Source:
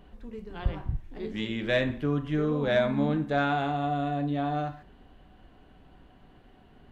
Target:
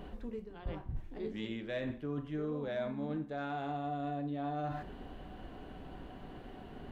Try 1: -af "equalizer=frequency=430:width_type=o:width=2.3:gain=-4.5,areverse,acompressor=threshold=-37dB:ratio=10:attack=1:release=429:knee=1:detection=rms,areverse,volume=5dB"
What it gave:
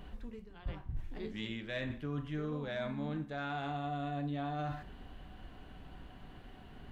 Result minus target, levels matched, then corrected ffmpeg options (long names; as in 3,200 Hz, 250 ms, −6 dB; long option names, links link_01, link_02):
500 Hz band −3.5 dB
-af "equalizer=frequency=430:width_type=o:width=2.3:gain=4.5,areverse,acompressor=threshold=-37dB:ratio=10:attack=1:release=429:knee=1:detection=rms,areverse,volume=5dB"